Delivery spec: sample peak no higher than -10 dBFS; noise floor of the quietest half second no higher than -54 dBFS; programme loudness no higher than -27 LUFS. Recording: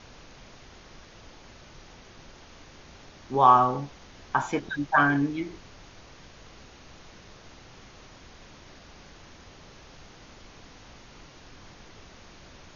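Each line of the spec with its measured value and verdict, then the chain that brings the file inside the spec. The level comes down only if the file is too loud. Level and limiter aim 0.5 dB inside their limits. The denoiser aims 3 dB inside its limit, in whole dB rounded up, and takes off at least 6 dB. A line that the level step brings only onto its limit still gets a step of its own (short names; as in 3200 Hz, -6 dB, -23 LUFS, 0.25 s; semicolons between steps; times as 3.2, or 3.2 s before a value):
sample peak -5.0 dBFS: fail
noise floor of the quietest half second -49 dBFS: fail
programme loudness -24.0 LUFS: fail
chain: denoiser 6 dB, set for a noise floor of -49 dBFS; gain -3.5 dB; limiter -10.5 dBFS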